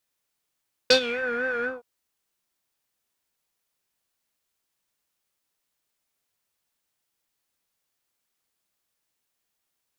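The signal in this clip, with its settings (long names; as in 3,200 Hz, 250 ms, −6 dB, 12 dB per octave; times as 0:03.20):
subtractive patch with vibrato B4, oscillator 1 square, oscillator 2 saw, interval −12 semitones, detune 22 cents, sub −10 dB, noise −3.5 dB, filter lowpass, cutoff 830 Hz, Q 4.9, filter envelope 2.5 octaves, filter decay 0.33 s, filter sustain 40%, attack 6.3 ms, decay 0.09 s, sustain −16 dB, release 0.17 s, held 0.75 s, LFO 4 Hz, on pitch 87 cents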